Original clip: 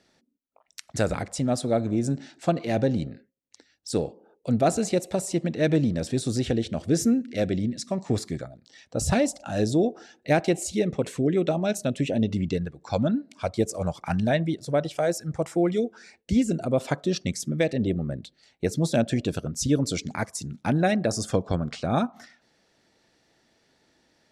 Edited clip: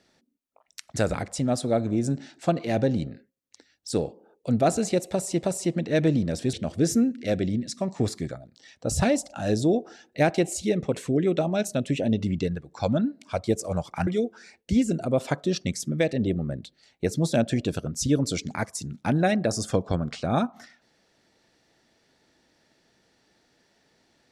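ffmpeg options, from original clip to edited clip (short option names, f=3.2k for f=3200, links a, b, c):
-filter_complex "[0:a]asplit=4[a][b][c][d];[a]atrim=end=5.432[e];[b]atrim=start=5.108:end=6.212[f];[c]atrim=start=6.628:end=14.172[g];[d]atrim=start=15.668[h];[e][f]acrossfade=d=0.004:c1=hsin:c2=hsin[i];[i][g]acrossfade=d=0.004:c1=hsin:c2=hsin[j];[j][h]acrossfade=d=0.004:c1=hsin:c2=hsin"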